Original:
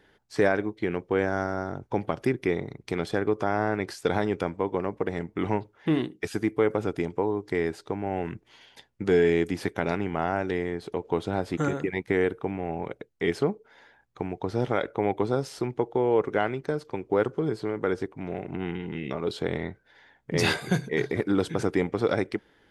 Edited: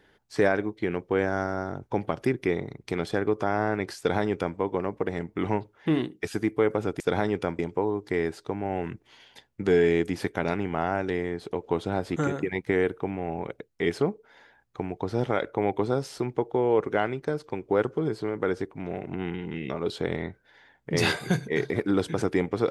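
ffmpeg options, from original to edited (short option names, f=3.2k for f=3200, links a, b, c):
-filter_complex "[0:a]asplit=3[a][b][c];[a]atrim=end=7.002[d];[b]atrim=start=3.978:end=4.572[e];[c]atrim=start=6.998[f];[d][e]acrossfade=d=0.004:c1=hsin:c2=hsin[g];[g][f]acrossfade=d=0.004:c1=hsin:c2=hsin"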